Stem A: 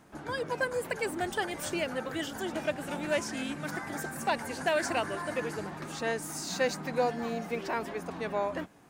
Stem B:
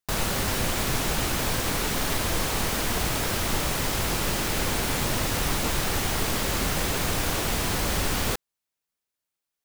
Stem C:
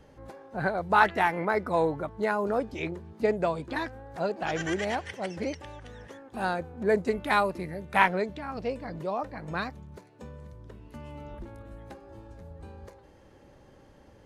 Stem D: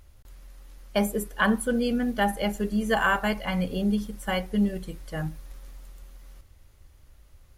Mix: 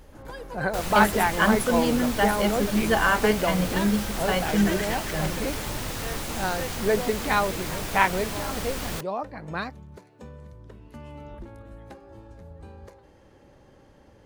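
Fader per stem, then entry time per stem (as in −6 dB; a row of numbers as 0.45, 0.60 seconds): −7.0, −6.5, +1.0, +1.5 decibels; 0.00, 0.65, 0.00, 0.00 seconds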